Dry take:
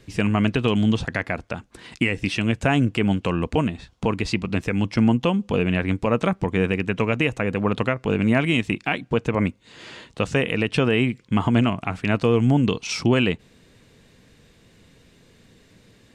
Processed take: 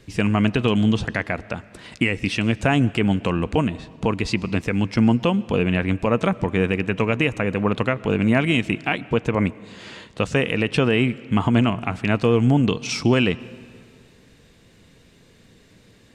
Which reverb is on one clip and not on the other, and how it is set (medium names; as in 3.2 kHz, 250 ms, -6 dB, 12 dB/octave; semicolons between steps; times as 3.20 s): algorithmic reverb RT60 2.2 s, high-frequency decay 0.7×, pre-delay 70 ms, DRR 19.5 dB; trim +1 dB